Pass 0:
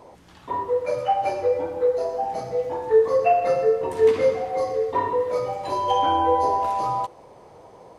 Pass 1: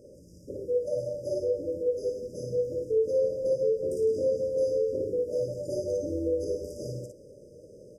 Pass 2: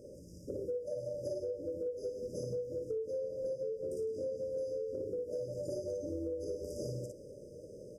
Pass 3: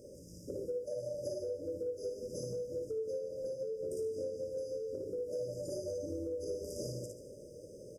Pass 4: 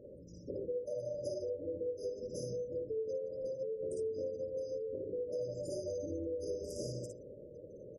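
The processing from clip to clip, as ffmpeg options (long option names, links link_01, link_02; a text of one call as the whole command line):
ffmpeg -i in.wav -filter_complex "[0:a]afftfilt=real='re*(1-between(b*sr/4096,620,4800))':imag='im*(1-between(b*sr/4096,620,4800))':win_size=4096:overlap=0.75,alimiter=limit=-20.5dB:level=0:latency=1:release=76,asplit=2[link_01][link_02];[link_02]aecho=0:1:25|57:0.178|0.631[link_03];[link_01][link_03]amix=inputs=2:normalize=0,volume=-2dB" out.wav
ffmpeg -i in.wav -af "acompressor=threshold=-35dB:ratio=10" out.wav
ffmpeg -i in.wav -af "highshelf=frequency=2400:gain=6.5,aecho=1:1:75|150|225|300|375|450:0.282|0.158|0.0884|0.0495|0.0277|0.0155,volume=-1.5dB" out.wav
ffmpeg -i in.wav -af "afftfilt=real='re*gte(hypot(re,im),0.00251)':imag='im*gte(hypot(re,im),0.00251)':win_size=1024:overlap=0.75" out.wav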